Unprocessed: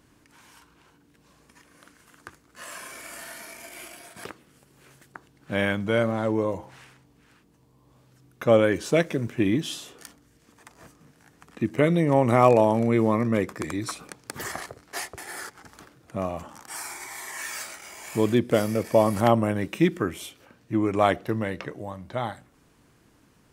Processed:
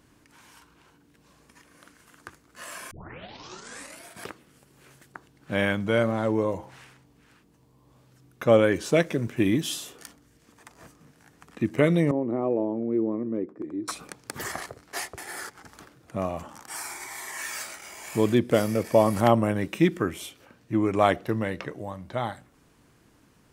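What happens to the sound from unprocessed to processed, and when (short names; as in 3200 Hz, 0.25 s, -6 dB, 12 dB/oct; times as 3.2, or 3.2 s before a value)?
2.91 tape start 1.14 s
9.36–9.97 high shelf 8500 Hz +10.5 dB
12.11–13.88 band-pass 320 Hz, Q 2.6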